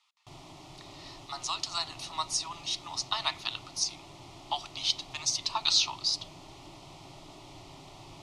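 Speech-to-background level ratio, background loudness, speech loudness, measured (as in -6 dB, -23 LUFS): 19.0 dB, -49.5 LUFS, -30.5 LUFS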